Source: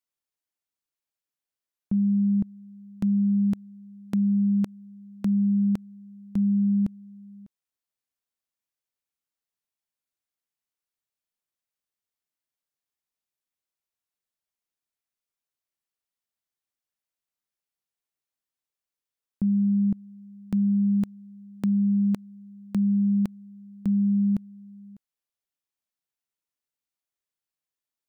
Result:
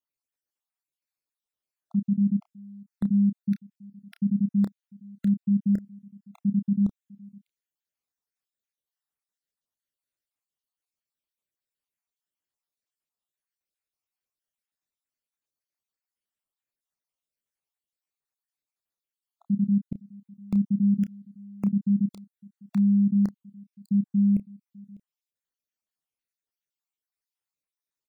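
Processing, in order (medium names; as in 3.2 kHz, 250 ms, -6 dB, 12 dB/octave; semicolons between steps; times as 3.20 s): random holes in the spectrogram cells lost 54%; doubling 30 ms -10.5 dB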